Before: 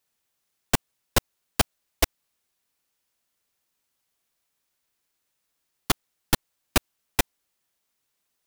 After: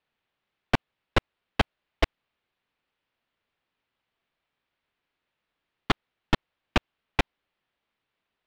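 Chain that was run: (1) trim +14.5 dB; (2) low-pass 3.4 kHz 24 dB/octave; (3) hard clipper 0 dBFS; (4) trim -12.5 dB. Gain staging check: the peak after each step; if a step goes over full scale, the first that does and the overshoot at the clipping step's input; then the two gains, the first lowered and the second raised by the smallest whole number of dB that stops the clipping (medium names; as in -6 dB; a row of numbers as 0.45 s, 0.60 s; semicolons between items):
+10.5 dBFS, +9.5 dBFS, 0.0 dBFS, -12.5 dBFS; step 1, 9.5 dB; step 1 +4.5 dB, step 4 -2.5 dB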